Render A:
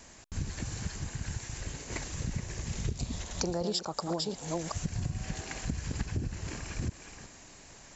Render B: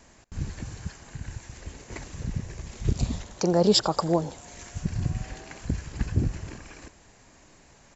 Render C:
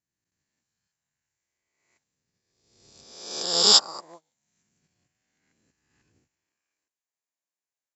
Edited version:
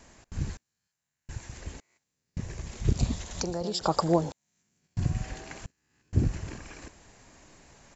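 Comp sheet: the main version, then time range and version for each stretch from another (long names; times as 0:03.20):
B
0:00.57–0:01.29: punch in from C
0:01.80–0:02.37: punch in from C
0:03.14–0:03.81: punch in from A
0:04.32–0:04.97: punch in from C
0:05.66–0:06.13: punch in from C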